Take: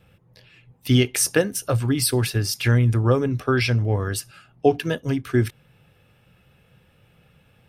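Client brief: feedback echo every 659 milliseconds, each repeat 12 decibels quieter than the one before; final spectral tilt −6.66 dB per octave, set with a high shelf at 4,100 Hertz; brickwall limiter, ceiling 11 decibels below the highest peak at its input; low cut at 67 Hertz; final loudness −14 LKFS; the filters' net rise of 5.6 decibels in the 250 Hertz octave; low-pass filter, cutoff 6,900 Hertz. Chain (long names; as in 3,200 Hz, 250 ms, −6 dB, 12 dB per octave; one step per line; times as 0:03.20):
high-pass filter 67 Hz
low-pass filter 6,900 Hz
parametric band 250 Hz +6.5 dB
high-shelf EQ 4,100 Hz −7 dB
brickwall limiter −13 dBFS
repeating echo 659 ms, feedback 25%, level −12 dB
level +10 dB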